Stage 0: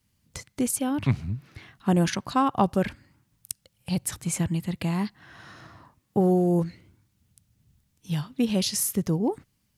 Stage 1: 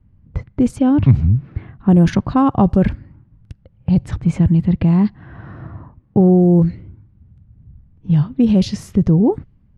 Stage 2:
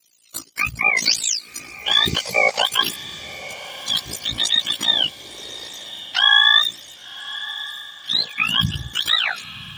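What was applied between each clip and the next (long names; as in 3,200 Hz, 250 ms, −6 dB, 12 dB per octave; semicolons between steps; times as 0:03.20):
low-pass that shuts in the quiet parts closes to 1,700 Hz, open at −17.5 dBFS; spectral tilt −4 dB per octave; in parallel at −2.5 dB: compressor whose output falls as the input rises −19 dBFS, ratio −1
frequency axis turned over on the octave scale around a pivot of 780 Hz; ring modulation 28 Hz; feedback delay with all-pass diffusion 1,085 ms, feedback 46%, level −15 dB; level +2.5 dB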